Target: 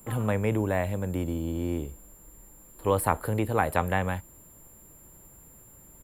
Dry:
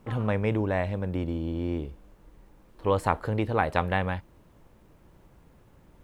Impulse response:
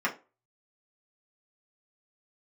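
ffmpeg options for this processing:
-filter_complex "[0:a]acrossover=split=170|850|3000[s0][s1][s2][s3];[s3]alimiter=level_in=5.31:limit=0.0631:level=0:latency=1:release=118,volume=0.188[s4];[s0][s1][s2][s4]amix=inputs=4:normalize=0,aresample=32000,aresample=44100,aeval=exprs='val(0)+0.00126*sin(2*PI*7300*n/s)':c=same,aexciter=amount=15.1:drive=5.7:freq=9300"

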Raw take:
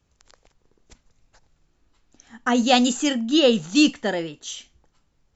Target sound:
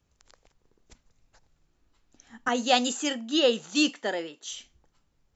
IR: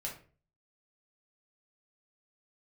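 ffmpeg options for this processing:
-filter_complex "[0:a]asettb=1/sr,asplit=3[s0][s1][s2];[s0]atrim=end=2.484[s3];[s1]atrim=start=2.48:end=4.52,asetpts=PTS-STARTPTS,afade=t=in:d=0.004:c=qsin,afade=t=out:st=2.036:d=0.004:c=qsin,highpass=340[s4];[s2]atrim=start=4.516[s5];[s3][s4]acrossfade=d=0.004:c1=hsin:c2=qsin[s6];[s6][s5]acrossfade=d=0.004:c1=qsin:c2=hsin,volume=0.631"

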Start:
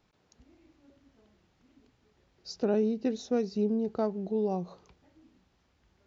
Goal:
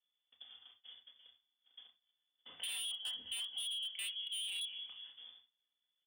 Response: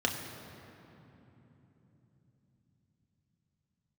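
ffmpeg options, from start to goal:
-filter_complex "[0:a]aeval=exprs='val(0)+0.000447*(sin(2*PI*60*n/s)+sin(2*PI*2*60*n/s)/2+sin(2*PI*3*60*n/s)/3+sin(2*PI*4*60*n/s)/4+sin(2*PI*5*60*n/s)/5)':c=same,asplit=2[s0][s1];[s1]adelay=206,lowpass=f=1100:p=1,volume=0.141,asplit=2[s2][s3];[s3]adelay=206,lowpass=f=1100:p=1,volume=0.34,asplit=2[s4][s5];[s5]adelay=206,lowpass=f=1100:p=1,volume=0.34[s6];[s0][s2][s4][s6]amix=inputs=4:normalize=0,afreqshift=68,asettb=1/sr,asplit=3[s7][s8][s9];[s7]atrim=end=2.494[s10];[s8]atrim=start=2.49:end=4.61,asetpts=PTS-STARTPTS,afade=t=in:d=0.004:c=qsin,afade=t=out:st=2.116:d=0.004:c=qsin,lowshelf=f=470:g=-9[s11];[s9]atrim=start=4.606[s12];[s10][s11]acrossfade=d=0.004:c1=hsin:c2=qsin[s13];[s13][s12]acrossfade=d=0.004:c1=qsin:c2=hsin,agate=range=0.0251:threshold=0.00112:ratio=16:detection=peak,equalizer=f=160:t=o:w=0.67:g=5,equalizer=f=400:t=o:w=0.67:g=-9,equalizer=f=1000:t=o:w=0.67:g=-6,lowpass=f=3100:t=q:w=0.5098,lowpass=f=3100:t=q:w=0.6013,lowpass=f=3100:t=q:w=0.9,lowpass=f=3100:t=q:w=2.563,afreqshift=-3600[s14];[1:a]atrim=start_sample=2205,atrim=end_sample=3969[s15];[s14][s15]afir=irnorm=-1:irlink=0,aeval=exprs='0.0631*(abs(mod(val(0)/0.0631+3,4)-2)-1)':c=same,acompressor=threshold=0.00178:ratio=2,volume=1.41"

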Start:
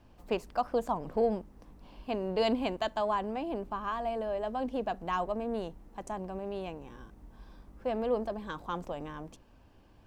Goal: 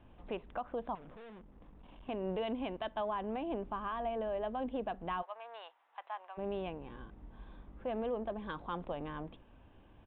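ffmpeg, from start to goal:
-filter_complex "[0:a]asplit=3[s0][s1][s2];[s0]afade=t=out:st=5.21:d=0.02[s3];[s1]highpass=f=840:w=0.5412,highpass=f=840:w=1.3066,afade=t=in:st=5.21:d=0.02,afade=t=out:st=6.37:d=0.02[s4];[s2]afade=t=in:st=6.37:d=0.02[s5];[s3][s4][s5]amix=inputs=3:normalize=0,alimiter=level_in=1.58:limit=0.0631:level=0:latency=1:release=250,volume=0.631,asettb=1/sr,asplit=3[s6][s7][s8];[s6]atrim=end=0.954[s9];[s7]atrim=start=0.95:end=2.09,asetpts=PTS-STARTPTS,afade=t=in:d=0.004:c=qsin,afade=t=out:st=1.136:d=0.004:c=qsin,aeval=exprs='(tanh(316*val(0)+0.35)-tanh(0.35))/316':c=same[s10];[s8]atrim=start=2.086[s11];[s9][s10]acrossfade=d=0.004:c1=hsin:c2=qsin[s12];[s12][s11]acrossfade=d=0.004:c1=qsin:c2=hsin,aresample=8000,aresample=44100"

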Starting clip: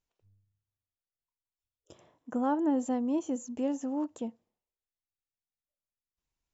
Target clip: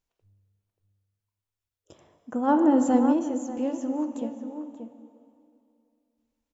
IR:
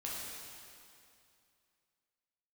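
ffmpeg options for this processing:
-filter_complex "[0:a]asplit=2[s0][s1];[s1]adelay=583.1,volume=0.398,highshelf=f=4000:g=-13.1[s2];[s0][s2]amix=inputs=2:normalize=0,asplit=2[s3][s4];[1:a]atrim=start_sample=2205,highshelf=f=5000:g=-10[s5];[s4][s5]afir=irnorm=-1:irlink=0,volume=0.562[s6];[s3][s6]amix=inputs=2:normalize=0,asplit=3[s7][s8][s9];[s7]afade=t=out:st=2.47:d=0.02[s10];[s8]acontrast=44,afade=t=in:st=2.47:d=0.02,afade=t=out:st=3.12:d=0.02[s11];[s9]afade=t=in:st=3.12:d=0.02[s12];[s10][s11][s12]amix=inputs=3:normalize=0"

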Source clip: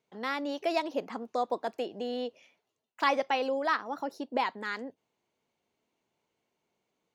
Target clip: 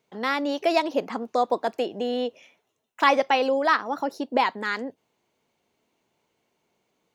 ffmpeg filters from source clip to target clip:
-filter_complex "[0:a]asettb=1/sr,asplit=3[s0][s1][s2];[s0]atrim=end=1.864[s3];[s1]atrim=start=1.86:end=3.08,asetpts=PTS-STARTPTS,afade=t=in:d=0.004:c=qsin,afade=t=out:st=1.216:d=0.004:c=qsin,bandreject=f=4600:w=6.2[s4];[s2]atrim=start=3.076[s5];[s3][s4]acrossfade=d=0.004:c1=hsin:c2=qsin[s6];[s6][s5]acrossfade=d=0.004:c1=qsin:c2=hsin,volume=2.37"

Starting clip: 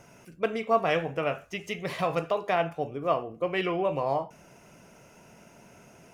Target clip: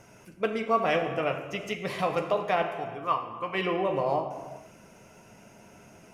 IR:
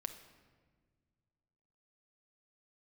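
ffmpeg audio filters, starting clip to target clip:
-filter_complex "[0:a]asettb=1/sr,asplit=3[s0][s1][s2];[s0]atrim=end=2.624[s3];[s1]atrim=start=2.62:end=3.55,asetpts=PTS-STARTPTS,afade=t=in:d=0.004:c=qsin,afade=t=out:st=0.926:d=0.004:c=qsin,lowshelf=f=780:t=q:w=3:g=-6[s4];[s2]atrim=start=3.546[s5];[s3][s4]acrossfade=d=0.004:c1=hsin:c2=qsin[s6];[s6][s5]acrossfade=d=0.004:c1=qsin:c2=hsin[s7];[1:a]atrim=start_sample=2205,afade=t=out:st=0.33:d=0.01,atrim=end_sample=14994,asetrate=26901,aresample=44100[s8];[s7][s8]afir=irnorm=-1:irlink=0"

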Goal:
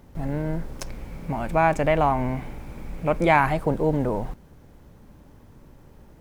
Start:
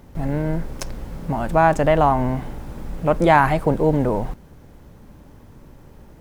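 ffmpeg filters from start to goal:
-filter_complex "[0:a]asettb=1/sr,asplit=3[s0][s1][s2];[s0]atrim=end=0.874[s3];[s1]atrim=start=0.87:end=3.46,asetpts=PTS-STARTPTS,afade=t=in:d=0.004:c=qsin,afade=t=out:st=2.586:d=0.004:c=qsin,equalizer=f=2300:t=o:w=0.23:g=12[s4];[s2]atrim=start=3.456[s5];[s3][s4]acrossfade=d=0.004:c1=hsin:c2=qsin[s6];[s6][s5]acrossfade=d=0.004:c1=qsin:c2=hsin,volume=0.596"

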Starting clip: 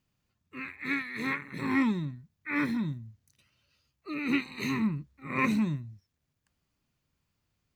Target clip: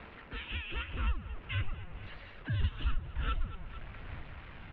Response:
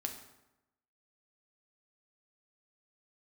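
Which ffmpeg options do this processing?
-af "aeval=exprs='val(0)+0.5*0.0133*sgn(val(0))':c=same,aphaser=in_gain=1:out_gain=1:delay=2.6:decay=0.23:speed=0.59:type=sinusoidal,asetrate=72324,aresample=44100,aecho=1:1:224|448|672|896:0.126|0.0554|0.0244|0.0107,acompressor=threshold=0.0158:ratio=3,highpass=f=430:t=q:w=0.5412,highpass=f=430:t=q:w=1.307,lowpass=f=3100:t=q:w=0.5176,lowpass=f=3100:t=q:w=0.7071,lowpass=f=3100:t=q:w=1.932,afreqshift=-380,asubboost=boost=5:cutoff=130,volume=1.12"

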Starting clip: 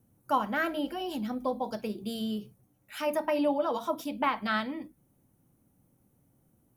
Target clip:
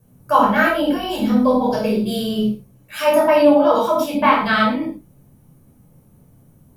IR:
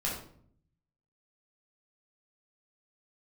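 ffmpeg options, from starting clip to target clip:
-filter_complex "[0:a]asettb=1/sr,asplit=3[s0][s1][s2];[s0]atrim=end=0.854[s3];[s1]atrim=start=0.85:end=3.09,asetpts=PTS-STARTPTS,afade=t=in:d=0.004:c=qsin,afade=t=out:st=2.236:d=0.004:c=qsin,asplit=2[s4][s5];[s5]adelay=47,volume=0.398[s6];[s4][s6]amix=inputs=2:normalize=0,atrim=end_sample=98784[s7];[s2]atrim=start=3.086[s8];[s3][s7]acrossfade=d=0.004:c1=hsin:c2=qsin[s9];[s9][s8]acrossfade=d=0.004:c1=qsin:c2=hsin[s10];[1:a]atrim=start_sample=2205,afade=t=out:st=0.17:d=0.01,atrim=end_sample=7938,asetrate=38808,aresample=44100[s11];[s10][s11]afir=irnorm=-1:irlink=0,volume=2.51"

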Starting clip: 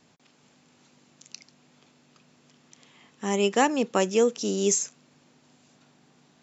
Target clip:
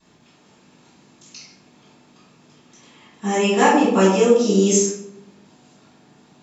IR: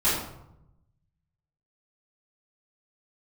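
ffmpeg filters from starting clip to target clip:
-filter_complex "[1:a]atrim=start_sample=2205[s0];[0:a][s0]afir=irnorm=-1:irlink=0,volume=0.473"

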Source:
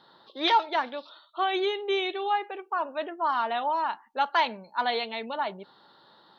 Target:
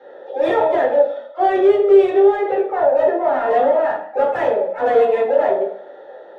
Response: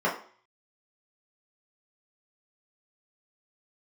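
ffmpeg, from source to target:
-filter_complex "[0:a]asplit=3[s0][s1][s2];[s0]bandpass=f=530:t=q:w=8,volume=1[s3];[s1]bandpass=f=1840:t=q:w=8,volume=0.501[s4];[s2]bandpass=f=2480:t=q:w=8,volume=0.355[s5];[s3][s4][s5]amix=inputs=3:normalize=0,asplit=2[s6][s7];[s7]highpass=f=720:p=1,volume=15.8,asoftclip=type=tanh:threshold=0.0473[s8];[s6][s8]amix=inputs=2:normalize=0,lowpass=f=1000:p=1,volume=0.501,asplit=2[s9][s10];[s10]asetrate=66075,aresample=44100,atempo=0.66742,volume=0.2[s11];[s9][s11]amix=inputs=2:normalize=0[s12];[1:a]atrim=start_sample=2205,afade=t=out:st=0.32:d=0.01,atrim=end_sample=14553,asetrate=28665,aresample=44100[s13];[s12][s13]afir=irnorm=-1:irlink=0,volume=1.26"

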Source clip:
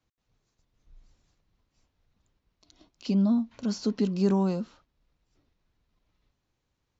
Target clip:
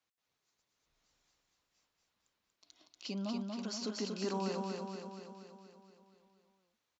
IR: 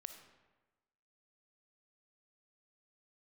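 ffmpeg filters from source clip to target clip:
-af "highpass=f=1000:p=1,aecho=1:1:237|474|711|948|1185|1422|1659|1896|2133:0.668|0.401|0.241|0.144|0.0866|0.052|0.0312|0.0187|0.0112,volume=0.794"

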